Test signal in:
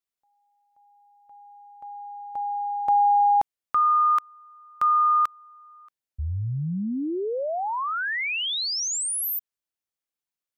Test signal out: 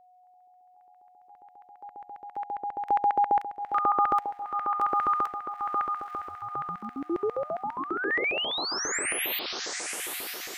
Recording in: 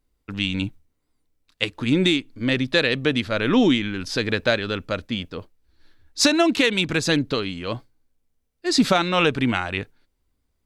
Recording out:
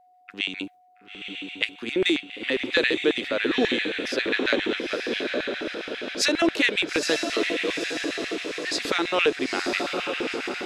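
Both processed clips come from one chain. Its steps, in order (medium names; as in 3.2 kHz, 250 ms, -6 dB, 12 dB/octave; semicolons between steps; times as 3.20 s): echo that smears into a reverb 916 ms, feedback 55%, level -4 dB; LFO high-pass square 7.4 Hz 370–1900 Hz; whistle 730 Hz -50 dBFS; trim -5.5 dB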